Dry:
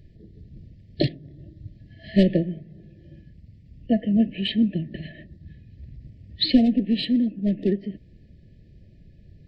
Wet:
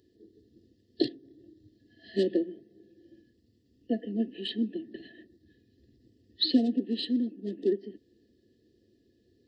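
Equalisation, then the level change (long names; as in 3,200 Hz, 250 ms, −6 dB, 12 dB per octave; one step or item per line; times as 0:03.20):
high-pass filter 260 Hz 12 dB per octave
phaser with its sweep stopped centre 610 Hz, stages 6
0.0 dB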